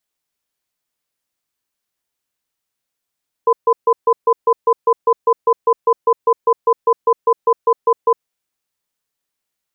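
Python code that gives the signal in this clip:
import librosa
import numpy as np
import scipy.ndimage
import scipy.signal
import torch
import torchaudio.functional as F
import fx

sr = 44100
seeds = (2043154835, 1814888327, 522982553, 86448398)

y = fx.cadence(sr, length_s=4.8, low_hz=463.0, high_hz=1010.0, on_s=0.06, off_s=0.14, level_db=-11.5)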